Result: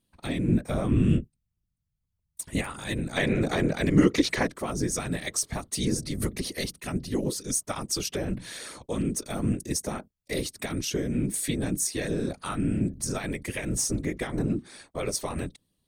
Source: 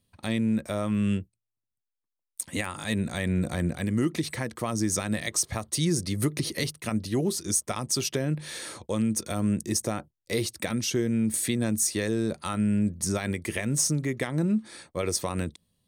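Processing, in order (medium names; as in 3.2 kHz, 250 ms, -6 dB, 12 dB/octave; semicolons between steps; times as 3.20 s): 0.48–2.62 s: bass shelf 210 Hz +10 dB; 3.16–4.48 s: time-frequency box 210–7300 Hz +9 dB; whisper effect; trim -2 dB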